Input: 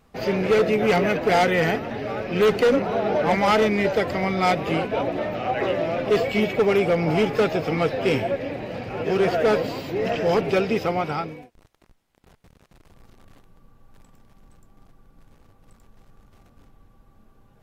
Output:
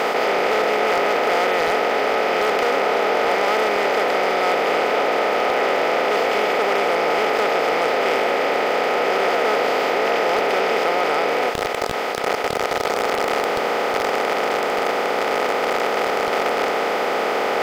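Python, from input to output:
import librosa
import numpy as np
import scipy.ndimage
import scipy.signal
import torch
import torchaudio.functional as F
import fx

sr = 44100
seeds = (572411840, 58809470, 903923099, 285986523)

p1 = fx.bin_compress(x, sr, power=0.2)
p2 = scipy.signal.sosfilt(scipy.signal.butter(2, 460.0, 'highpass', fs=sr, output='sos'), p1)
p3 = fx.over_compress(p2, sr, threshold_db=-19.0, ratio=-0.5)
p4 = p2 + (p3 * librosa.db_to_amplitude(-3.0))
p5 = 10.0 ** (-2.5 / 20.0) * (np.abs((p4 / 10.0 ** (-2.5 / 20.0) + 3.0) % 4.0 - 2.0) - 1.0)
y = p5 * librosa.db_to_amplitude(-7.0)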